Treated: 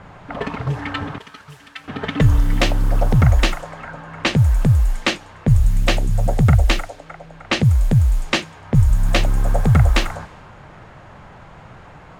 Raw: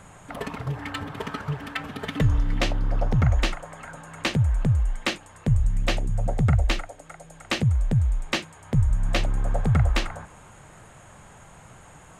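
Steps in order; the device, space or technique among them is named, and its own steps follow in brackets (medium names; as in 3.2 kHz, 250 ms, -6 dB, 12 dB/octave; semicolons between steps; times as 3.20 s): cassette deck with a dynamic noise filter (white noise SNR 28 dB; level-controlled noise filter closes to 1.9 kHz, open at -19 dBFS); 1.18–1.88 s: pre-emphasis filter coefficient 0.9; trim +7 dB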